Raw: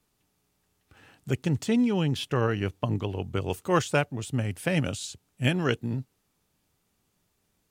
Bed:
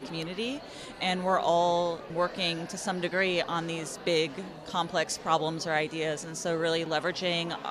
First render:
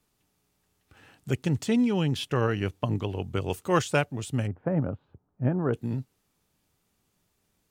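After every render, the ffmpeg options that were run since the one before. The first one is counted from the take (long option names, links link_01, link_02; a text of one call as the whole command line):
ffmpeg -i in.wav -filter_complex "[0:a]asplit=3[link_01][link_02][link_03];[link_01]afade=type=out:start_time=4.46:duration=0.02[link_04];[link_02]lowpass=frequency=1200:width=0.5412,lowpass=frequency=1200:width=1.3066,afade=type=in:start_time=4.46:duration=0.02,afade=type=out:start_time=5.73:duration=0.02[link_05];[link_03]afade=type=in:start_time=5.73:duration=0.02[link_06];[link_04][link_05][link_06]amix=inputs=3:normalize=0" out.wav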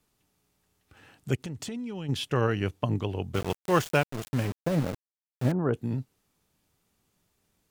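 ffmpeg -i in.wav -filter_complex "[0:a]asplit=3[link_01][link_02][link_03];[link_01]afade=type=out:start_time=1.35:duration=0.02[link_04];[link_02]acompressor=threshold=-32dB:ratio=16:attack=3.2:release=140:knee=1:detection=peak,afade=type=in:start_time=1.35:duration=0.02,afade=type=out:start_time=2.08:duration=0.02[link_05];[link_03]afade=type=in:start_time=2.08:duration=0.02[link_06];[link_04][link_05][link_06]amix=inputs=3:normalize=0,asettb=1/sr,asplit=3[link_07][link_08][link_09];[link_07]atrim=end=3.344[link_10];[link_08]atrim=start=3.34:end=5.52,asetpts=PTS-STARTPTS,afade=type=in:duration=0.004:curve=qsin,afade=type=out:start_time=2.176:duration=0.004:curve=qsin,aeval=exprs='val(0)*gte(abs(val(0)),0.0282)':channel_layout=same[link_11];[link_09]atrim=start=5.516[link_12];[link_10][link_11]acrossfade=duration=0.004:curve1=hsin:curve2=qsin[link_13];[link_13][link_12]acrossfade=duration=0.004:curve1=qsin:curve2=hsin" out.wav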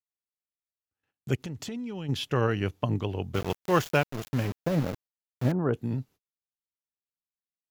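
ffmpeg -i in.wav -af "agate=range=-39dB:threshold=-50dB:ratio=16:detection=peak,equalizer=frequency=8700:width_type=o:width=0.23:gain=-10.5" out.wav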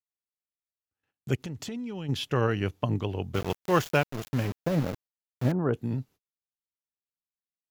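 ffmpeg -i in.wav -af anull out.wav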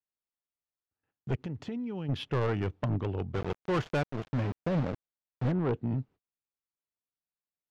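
ffmpeg -i in.wav -af "asoftclip=type=hard:threshold=-24.5dB,adynamicsmooth=sensitivity=1.5:basefreq=2200" out.wav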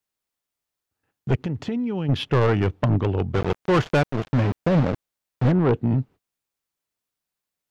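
ffmpeg -i in.wav -af "volume=10dB" out.wav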